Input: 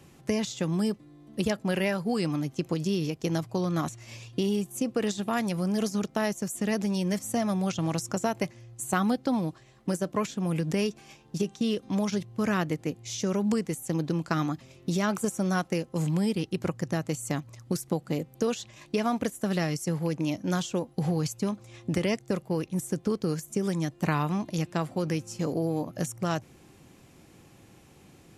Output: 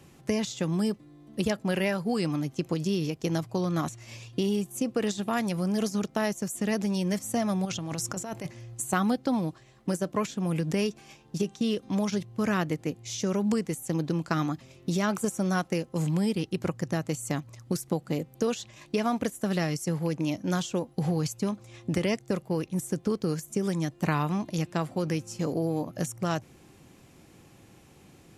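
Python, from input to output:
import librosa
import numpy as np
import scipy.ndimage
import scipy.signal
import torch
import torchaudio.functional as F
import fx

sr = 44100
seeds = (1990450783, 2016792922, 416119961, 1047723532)

y = fx.over_compress(x, sr, threshold_db=-33.0, ratio=-1.0, at=(7.65, 8.82))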